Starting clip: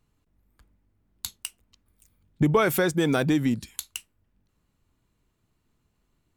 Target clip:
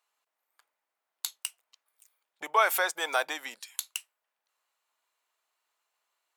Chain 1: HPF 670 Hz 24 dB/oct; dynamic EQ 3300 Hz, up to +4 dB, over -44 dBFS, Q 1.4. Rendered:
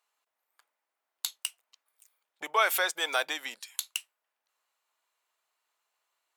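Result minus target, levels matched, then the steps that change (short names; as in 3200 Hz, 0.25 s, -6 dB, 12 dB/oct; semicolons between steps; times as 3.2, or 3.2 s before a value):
4000 Hz band +3.5 dB
change: dynamic EQ 880 Hz, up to +4 dB, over -44 dBFS, Q 1.4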